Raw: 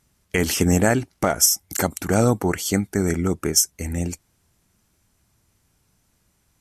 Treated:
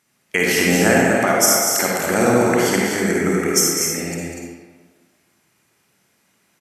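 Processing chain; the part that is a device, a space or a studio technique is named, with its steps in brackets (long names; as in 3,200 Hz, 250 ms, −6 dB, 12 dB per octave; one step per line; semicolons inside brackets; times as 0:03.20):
stadium PA (high-pass filter 220 Hz 12 dB per octave; parametric band 2,100 Hz +6 dB 1.2 octaves; loudspeakers that aren't time-aligned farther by 68 metres −8 dB, 83 metres −7 dB; convolution reverb RT60 1.5 s, pre-delay 46 ms, DRR −2.5 dB)
level −1 dB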